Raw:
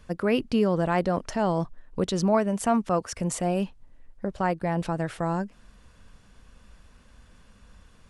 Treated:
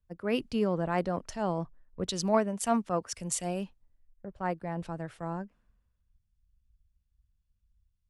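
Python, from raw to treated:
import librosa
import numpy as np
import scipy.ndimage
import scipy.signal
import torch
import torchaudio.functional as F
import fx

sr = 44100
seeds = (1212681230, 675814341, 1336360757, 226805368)

y = fx.cheby_harmonics(x, sr, harmonics=(3,), levels_db=(-31,), full_scale_db=-10.5)
y = fx.band_widen(y, sr, depth_pct=100)
y = y * librosa.db_to_amplitude(-6.5)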